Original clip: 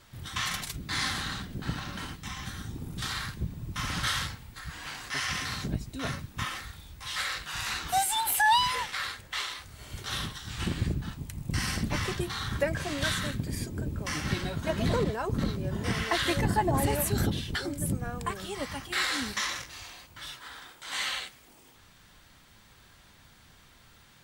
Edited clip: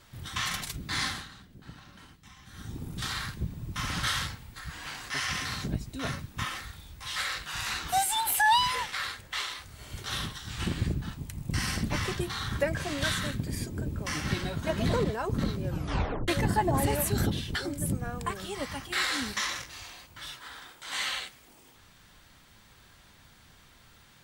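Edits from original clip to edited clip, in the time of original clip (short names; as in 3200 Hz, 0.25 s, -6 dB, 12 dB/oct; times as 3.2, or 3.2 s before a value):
1.03–2.73 dip -14 dB, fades 0.25 s
15.66 tape stop 0.62 s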